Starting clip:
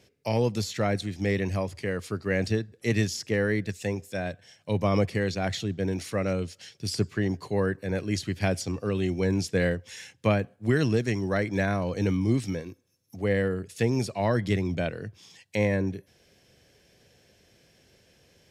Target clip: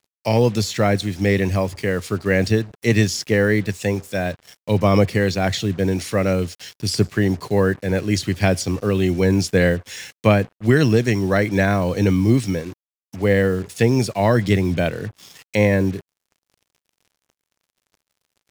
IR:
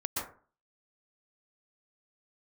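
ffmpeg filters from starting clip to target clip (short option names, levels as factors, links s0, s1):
-af "acrusher=bits=7:mix=0:aa=0.5,volume=2.66"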